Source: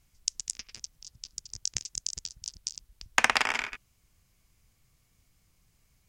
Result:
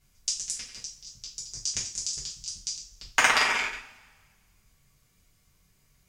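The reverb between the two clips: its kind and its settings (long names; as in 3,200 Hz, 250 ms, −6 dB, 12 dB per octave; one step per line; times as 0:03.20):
coupled-rooms reverb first 0.37 s, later 1.6 s, from −22 dB, DRR −6 dB
level −3.5 dB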